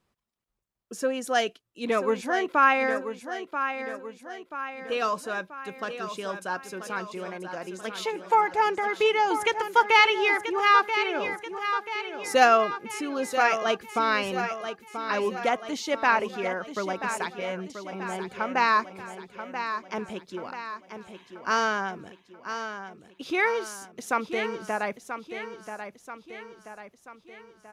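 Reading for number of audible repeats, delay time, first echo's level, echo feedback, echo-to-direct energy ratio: 5, 984 ms, -9.0 dB, 51%, -7.5 dB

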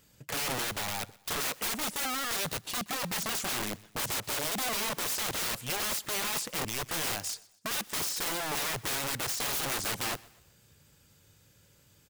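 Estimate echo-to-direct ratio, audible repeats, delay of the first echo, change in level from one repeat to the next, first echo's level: -21.5 dB, 2, 124 ms, -8.0 dB, -22.5 dB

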